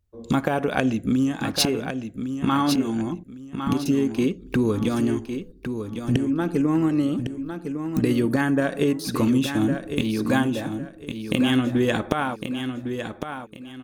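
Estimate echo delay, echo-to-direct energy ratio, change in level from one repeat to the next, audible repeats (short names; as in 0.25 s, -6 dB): 1.106 s, -7.5 dB, -11.0 dB, 3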